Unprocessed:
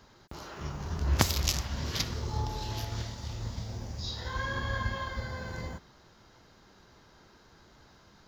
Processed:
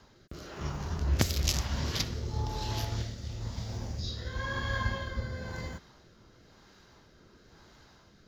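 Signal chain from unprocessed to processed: rotary speaker horn 1 Hz; gain +2.5 dB

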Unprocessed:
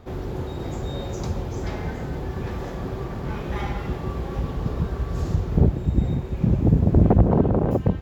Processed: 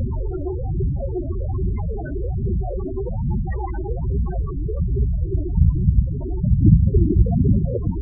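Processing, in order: delta modulation 64 kbps, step -18 dBFS; phaser 1.2 Hz, delay 3.4 ms, feedback 48%; loudest bins only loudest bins 8; gain +1 dB

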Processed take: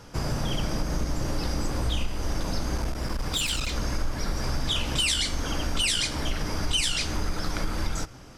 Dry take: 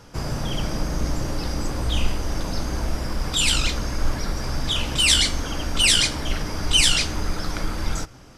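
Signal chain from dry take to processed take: compressor, threshold -22 dBFS, peak gain reduction 9.5 dB; 2.77–3.73 one-sided clip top -26.5 dBFS

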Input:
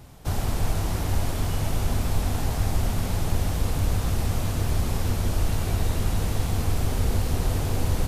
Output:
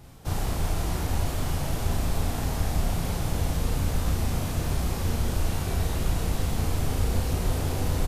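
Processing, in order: doubler 35 ms -2 dB; gain -3 dB

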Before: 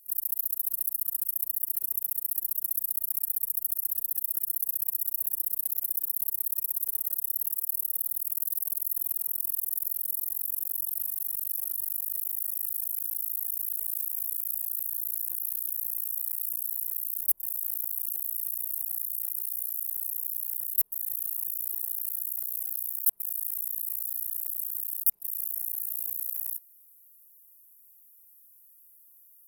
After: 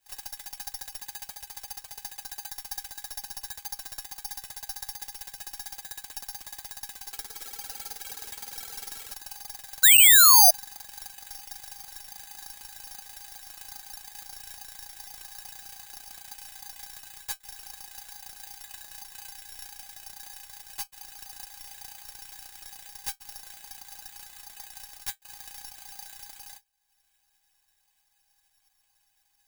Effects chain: weighting filter ITU-R 468; transient shaper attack +6 dB, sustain -8 dB; metallic resonator 180 Hz, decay 0.46 s, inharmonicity 0.008; 6.8–9.14 echoes that change speed 0.311 s, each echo +2 st, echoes 3, each echo -6 dB; 9.83–10.51 painted sound fall 640–4100 Hz -15 dBFS; careless resampling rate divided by 8×, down none, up zero stuff; gain -8 dB

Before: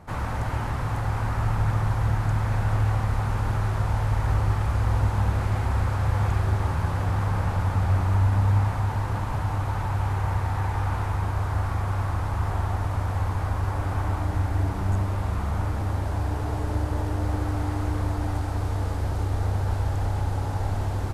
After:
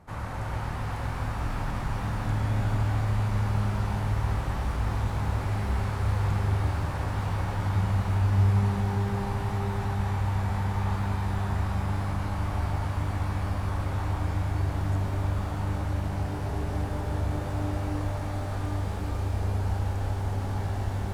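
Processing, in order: shimmer reverb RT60 3.9 s, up +12 st, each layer -8 dB, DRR 1 dB; gain -6.5 dB

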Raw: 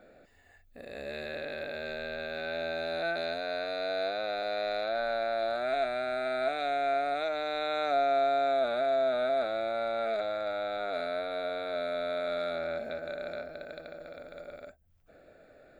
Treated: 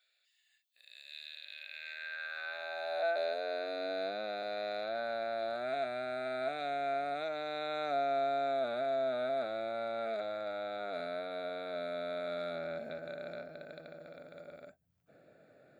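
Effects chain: high-pass sweep 3400 Hz -> 140 Hz, 1.43–4.49; gain -6 dB

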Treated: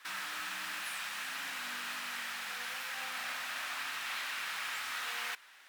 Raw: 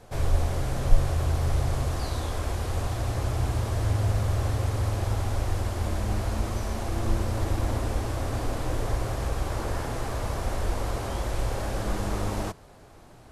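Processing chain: HPF 710 Hz 12 dB/oct; high shelf 5700 Hz -10 dB; speed mistake 33 rpm record played at 78 rpm

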